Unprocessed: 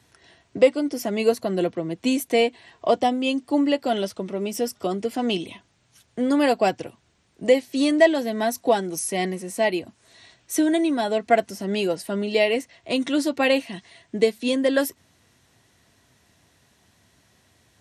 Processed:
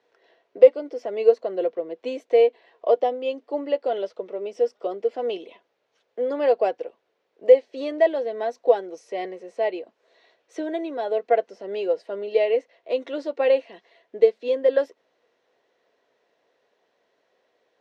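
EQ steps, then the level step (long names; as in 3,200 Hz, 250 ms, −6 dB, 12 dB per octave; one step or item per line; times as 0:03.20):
high-pass with resonance 480 Hz, resonance Q 4.5
low-pass filter 11,000 Hz
high-frequency loss of the air 190 metres
−7.5 dB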